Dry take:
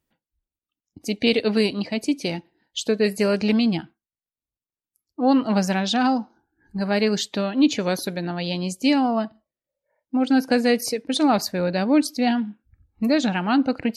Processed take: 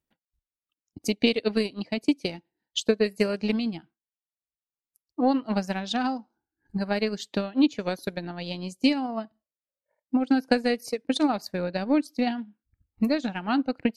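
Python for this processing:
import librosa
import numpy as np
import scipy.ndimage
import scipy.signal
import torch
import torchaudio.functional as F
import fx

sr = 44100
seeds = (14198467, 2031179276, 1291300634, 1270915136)

y = fx.transient(x, sr, attack_db=10, sustain_db=-8)
y = F.gain(torch.from_numpy(y), -8.5).numpy()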